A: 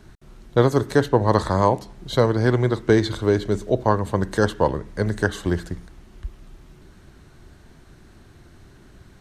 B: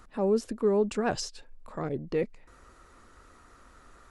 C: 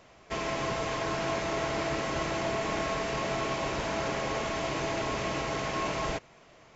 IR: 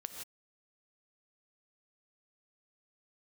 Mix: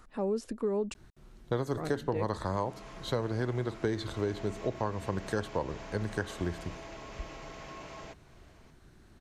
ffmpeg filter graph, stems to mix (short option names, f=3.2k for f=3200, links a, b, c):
-filter_complex "[0:a]adelay=950,volume=-9dB[a];[1:a]volume=-2.5dB,asplit=3[b][c][d];[b]atrim=end=0.94,asetpts=PTS-STARTPTS,afade=t=out:st=0.936:d=0.004:c=hsin[e];[c]atrim=start=0.94:end=1.73,asetpts=PTS-STARTPTS,volume=0[f];[d]atrim=start=1.73,asetpts=PTS-STARTPTS,afade=t=in:d=0.004:c=hsin[g];[e][f][g]concat=n=3:v=0:a=1,asplit=2[h][i];[2:a]acompressor=threshold=-39dB:ratio=2.5,adelay=1950,volume=-7dB[j];[i]apad=whole_len=383785[k];[j][k]sidechaincompress=threshold=-56dB:ratio=8:attack=9.2:release=294[l];[a][h][l]amix=inputs=3:normalize=0,acompressor=threshold=-28dB:ratio=3"